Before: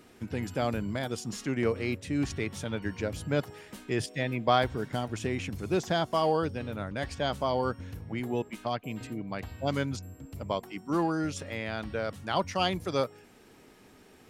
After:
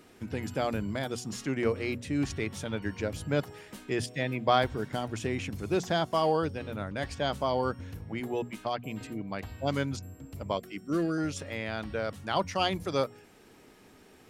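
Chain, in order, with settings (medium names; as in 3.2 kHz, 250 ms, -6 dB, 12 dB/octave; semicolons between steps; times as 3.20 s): 10.57–11.18 s: Butterworth band-stop 900 Hz, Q 1.5; hum notches 60/120/180/240 Hz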